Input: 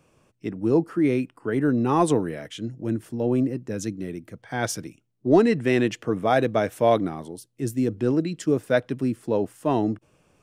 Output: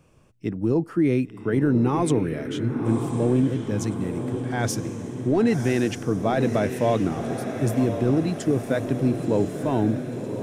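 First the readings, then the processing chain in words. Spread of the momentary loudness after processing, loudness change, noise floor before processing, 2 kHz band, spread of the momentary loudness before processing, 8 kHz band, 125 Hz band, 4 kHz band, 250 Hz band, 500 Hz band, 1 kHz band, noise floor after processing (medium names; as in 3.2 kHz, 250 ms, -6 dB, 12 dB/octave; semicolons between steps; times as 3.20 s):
7 LU, 0.0 dB, -66 dBFS, -2.0 dB, 13 LU, +1.0 dB, +5.0 dB, -0.5 dB, +1.5 dB, -1.0 dB, -3.0 dB, -44 dBFS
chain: bass shelf 140 Hz +10.5 dB; peak limiter -13 dBFS, peak gain reduction 9 dB; on a send: echo that smears into a reverb 1058 ms, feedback 58%, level -7.5 dB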